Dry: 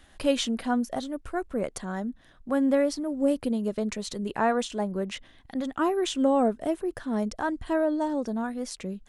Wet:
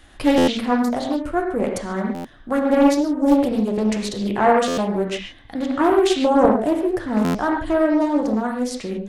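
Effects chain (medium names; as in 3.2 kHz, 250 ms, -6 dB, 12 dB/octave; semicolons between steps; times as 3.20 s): reverberation, pre-delay 3 ms, DRR 0 dB; buffer glitch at 0.37/2.14/4.67/7.24 s, samples 512, times 8; loudspeaker Doppler distortion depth 0.47 ms; trim +5.5 dB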